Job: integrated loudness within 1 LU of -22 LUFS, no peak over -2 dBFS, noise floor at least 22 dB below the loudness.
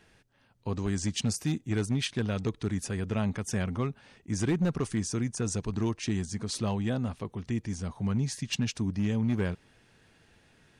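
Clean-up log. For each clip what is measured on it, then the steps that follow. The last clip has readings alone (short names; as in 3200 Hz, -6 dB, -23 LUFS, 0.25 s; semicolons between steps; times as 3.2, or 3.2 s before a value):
clipped 1.0%; flat tops at -21.5 dBFS; loudness -31.5 LUFS; peak -21.5 dBFS; loudness target -22.0 LUFS
-> clip repair -21.5 dBFS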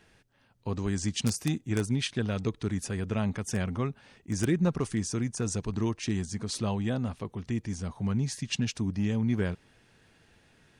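clipped 0.0%; loudness -31.0 LUFS; peak -12.5 dBFS; loudness target -22.0 LUFS
-> gain +9 dB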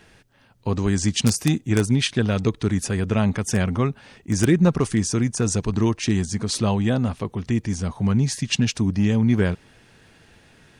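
loudness -22.0 LUFS; peak -3.5 dBFS; noise floor -55 dBFS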